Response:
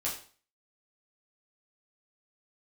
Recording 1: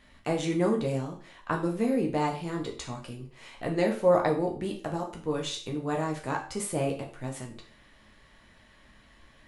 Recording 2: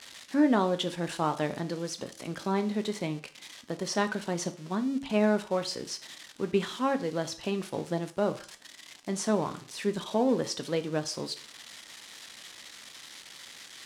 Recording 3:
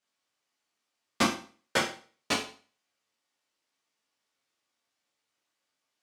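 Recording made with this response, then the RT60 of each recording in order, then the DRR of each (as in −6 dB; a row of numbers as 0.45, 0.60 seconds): 3; 0.40, 0.40, 0.40 seconds; 0.5, 8.5, −6.0 decibels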